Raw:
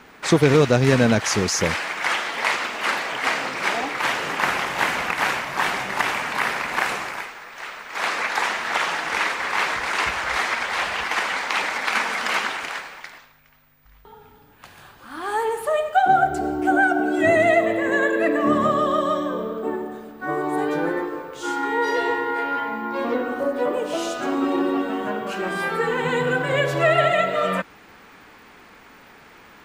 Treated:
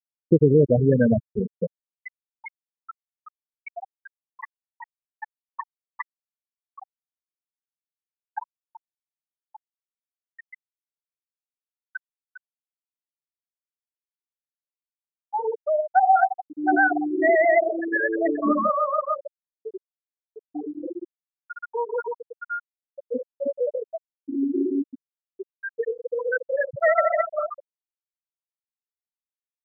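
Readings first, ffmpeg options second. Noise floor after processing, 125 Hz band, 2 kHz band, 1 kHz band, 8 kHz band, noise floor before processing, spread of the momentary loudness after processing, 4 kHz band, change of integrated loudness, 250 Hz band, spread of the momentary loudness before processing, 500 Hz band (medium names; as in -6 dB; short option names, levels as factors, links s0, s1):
under -85 dBFS, no reading, -8.5 dB, -4.5 dB, under -40 dB, -49 dBFS, 22 LU, under -40 dB, -1.5 dB, -3.0 dB, 10 LU, -2.5 dB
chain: -filter_complex "[0:a]asplit=2[s0][s1];[s1]adelay=342,lowpass=f=910:p=1,volume=0.2,asplit=2[s2][s3];[s3]adelay=342,lowpass=f=910:p=1,volume=0.45,asplit=2[s4][s5];[s5]adelay=342,lowpass=f=910:p=1,volume=0.45,asplit=2[s6][s7];[s7]adelay=342,lowpass=f=910:p=1,volume=0.45[s8];[s0][s2][s4][s6][s8]amix=inputs=5:normalize=0,afftfilt=real='re*gte(hypot(re,im),0.562)':imag='im*gte(hypot(re,im),0.562)':win_size=1024:overlap=0.75"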